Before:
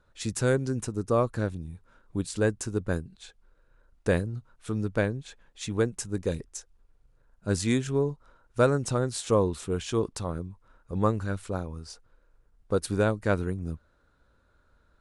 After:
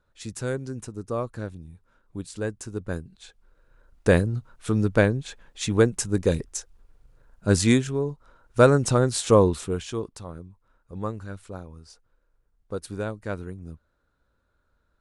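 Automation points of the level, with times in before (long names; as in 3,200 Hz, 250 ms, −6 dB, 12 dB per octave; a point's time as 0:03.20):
0:02.54 −4.5 dB
0:04.22 +7 dB
0:07.71 +7 dB
0:07.97 −1 dB
0:08.66 +6.5 dB
0:09.49 +6.5 dB
0:10.11 −6 dB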